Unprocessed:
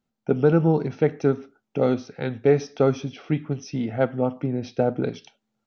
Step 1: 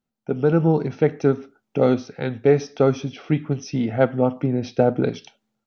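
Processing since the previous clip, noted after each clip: level rider; trim -3.5 dB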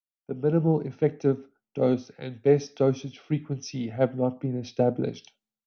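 dynamic bell 1.4 kHz, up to -7 dB, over -37 dBFS, Q 1.1; three bands expanded up and down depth 70%; trim -5 dB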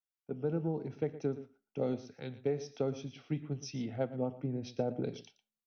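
compression 10:1, threshold -22 dBFS, peak gain reduction 9 dB; delay 116 ms -15.5 dB; trim -6.5 dB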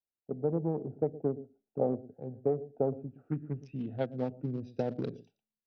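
local Wiener filter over 41 samples; low-pass sweep 760 Hz -> 5 kHz, 2.92–4.17 s; trim +1.5 dB

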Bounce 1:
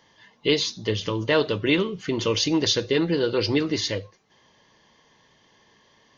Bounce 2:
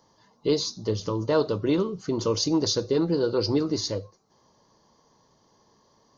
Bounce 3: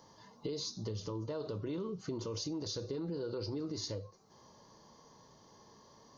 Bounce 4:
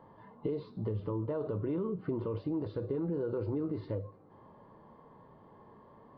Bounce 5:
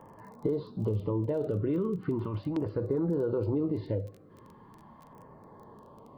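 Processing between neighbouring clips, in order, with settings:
high-order bell 2.4 kHz -15 dB 1.3 oct; trim -1 dB
harmonic-percussive split harmonic +6 dB; peak limiter -17.5 dBFS, peak gain reduction 10.5 dB; compression 4:1, threshold -37 dBFS, peak gain reduction 13 dB; trim -1.5 dB
Gaussian low-pass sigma 4.1 samples; on a send at -21 dB: reverberation RT60 1.7 s, pre-delay 3 ms; on the sum: trim +5 dB
crackle 18 per s -47 dBFS; LFO notch saw down 0.39 Hz 380–4200 Hz; trim +5 dB

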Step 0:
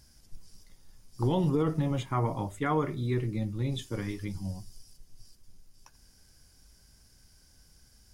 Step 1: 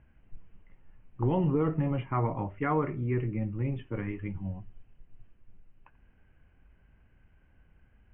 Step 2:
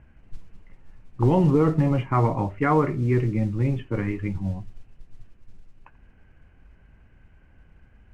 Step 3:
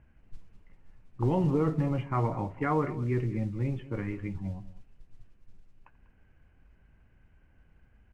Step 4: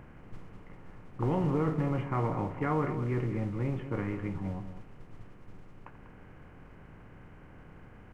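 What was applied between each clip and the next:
steep low-pass 2.9 kHz 96 dB/octave
modulation noise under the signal 30 dB; distance through air 72 m; trim +8 dB
delay 195 ms -16.5 dB; trim -7.5 dB
spectral levelling over time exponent 0.6; trim -4.5 dB

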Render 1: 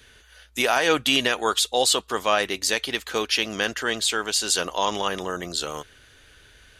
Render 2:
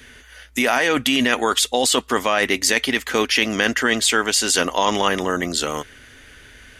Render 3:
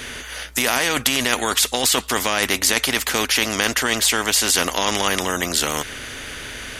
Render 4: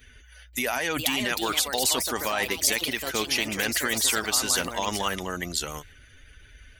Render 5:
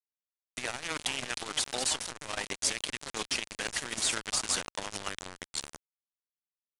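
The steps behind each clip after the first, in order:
graphic EQ with 31 bands 250 Hz +10 dB, 2 kHz +7 dB, 4 kHz -5 dB; in parallel at +3 dB: compressor with a negative ratio -23 dBFS, ratio -0.5; on the sum: trim -2.5 dB
spectrum-flattening compressor 2:1
expander on every frequency bin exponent 2; ever faster or slower copies 531 ms, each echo +4 st, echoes 2, each echo -6 dB; endings held to a fixed fall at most 230 dB/s; trim -2 dB
bit crusher 4-bit; resampled via 22.05 kHz; transformer saturation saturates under 1.4 kHz; trim -5.5 dB

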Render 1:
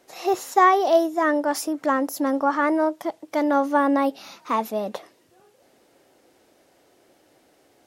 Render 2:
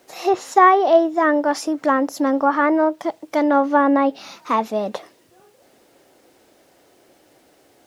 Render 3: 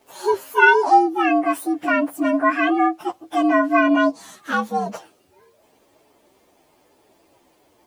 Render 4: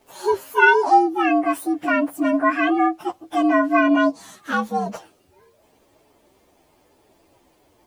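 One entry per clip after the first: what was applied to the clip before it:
low-pass that closes with the level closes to 2.9 kHz, closed at -15.5 dBFS; word length cut 12-bit, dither triangular; trim +4 dB
frequency axis rescaled in octaves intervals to 119%; trim +1 dB
bass shelf 98 Hz +11 dB; trim -1 dB

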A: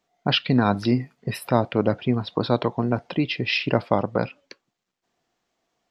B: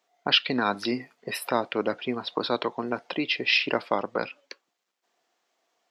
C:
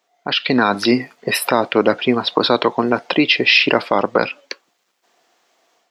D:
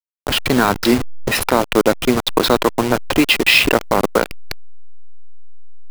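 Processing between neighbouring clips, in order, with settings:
high-pass 420 Hz 12 dB/octave; dynamic bell 670 Hz, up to -7 dB, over -35 dBFS, Q 1.1; trim +2 dB
peak limiter -15.5 dBFS, peak gain reduction 10 dB; level rider gain up to 8 dB; trim +5.5 dB
send-on-delta sampling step -16 dBFS; trim +1 dB

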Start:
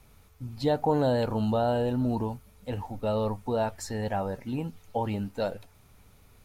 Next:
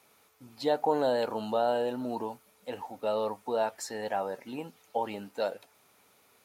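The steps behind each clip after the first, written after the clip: high-pass 370 Hz 12 dB/octave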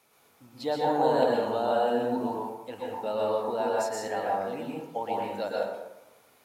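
plate-style reverb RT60 0.96 s, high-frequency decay 0.5×, pre-delay 105 ms, DRR -4 dB; trim -2.5 dB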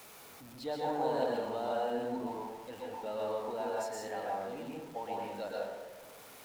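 jump at every zero crossing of -39 dBFS; trim -9 dB

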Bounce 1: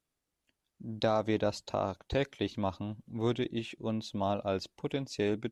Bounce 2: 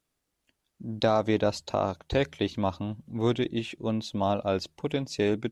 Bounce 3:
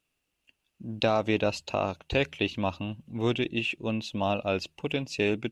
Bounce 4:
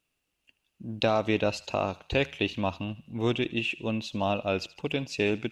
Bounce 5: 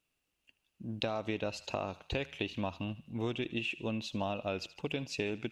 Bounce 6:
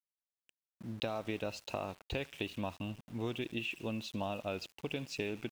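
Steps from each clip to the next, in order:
de-hum 78.25 Hz, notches 2; trim +5 dB
peaking EQ 2.7 kHz +15 dB 0.32 oct; trim -1.5 dB
thinning echo 77 ms, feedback 59%, high-pass 1 kHz, level -18.5 dB
compression, threshold -28 dBFS, peak gain reduction 8 dB; trim -3 dB
small samples zeroed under -49.5 dBFS; trim -2.5 dB

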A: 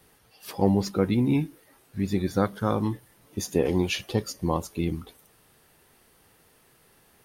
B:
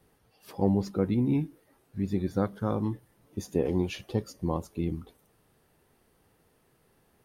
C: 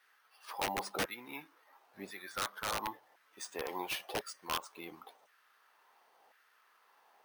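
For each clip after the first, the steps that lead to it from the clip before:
tilt shelf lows +4.5 dB, about 1.1 kHz; trim -7 dB
LFO high-pass saw down 0.95 Hz 700–1600 Hz; integer overflow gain 28 dB; careless resampling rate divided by 3×, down filtered, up hold; trim +1.5 dB

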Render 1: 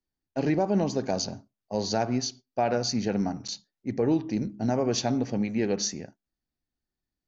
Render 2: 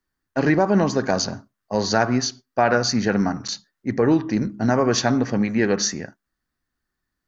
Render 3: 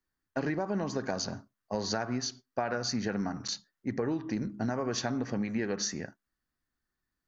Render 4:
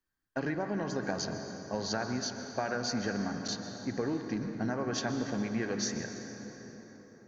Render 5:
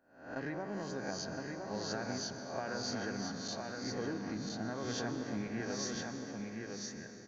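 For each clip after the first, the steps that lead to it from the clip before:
high-order bell 1.4 kHz +9.5 dB 1.1 oct; trim +6.5 dB
compression, threshold -22 dBFS, peak gain reduction 9.5 dB; trim -6 dB
small resonant body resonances 1.6/3.2 kHz, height 8 dB; reverberation RT60 4.8 s, pre-delay 113 ms, DRR 6 dB; trim -2 dB
reverse spectral sustain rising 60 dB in 0.57 s; delay 1014 ms -4 dB; trim -8 dB

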